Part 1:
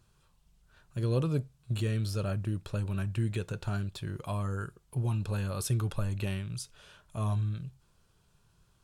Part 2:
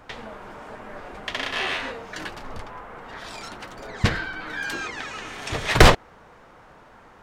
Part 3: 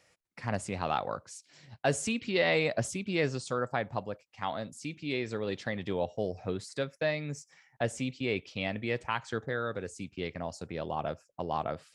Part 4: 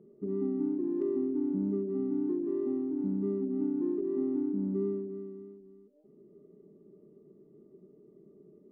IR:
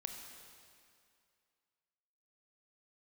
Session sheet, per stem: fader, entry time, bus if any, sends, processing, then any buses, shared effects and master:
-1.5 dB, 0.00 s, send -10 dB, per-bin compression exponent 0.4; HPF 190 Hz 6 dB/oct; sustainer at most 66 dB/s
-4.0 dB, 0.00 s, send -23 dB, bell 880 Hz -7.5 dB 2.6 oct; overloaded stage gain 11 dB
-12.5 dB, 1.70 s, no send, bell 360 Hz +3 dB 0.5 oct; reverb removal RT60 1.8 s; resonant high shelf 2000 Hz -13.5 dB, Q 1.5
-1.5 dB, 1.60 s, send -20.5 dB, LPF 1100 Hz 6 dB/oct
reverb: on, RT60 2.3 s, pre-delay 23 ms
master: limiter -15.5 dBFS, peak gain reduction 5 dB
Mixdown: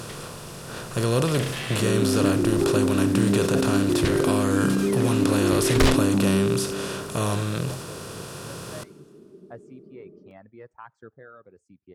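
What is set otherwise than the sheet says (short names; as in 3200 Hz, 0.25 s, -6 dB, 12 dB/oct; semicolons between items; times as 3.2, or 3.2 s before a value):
stem 1 -1.5 dB -> +4.5 dB; stem 4 -1.5 dB -> +8.0 dB; master: missing limiter -15.5 dBFS, peak gain reduction 5 dB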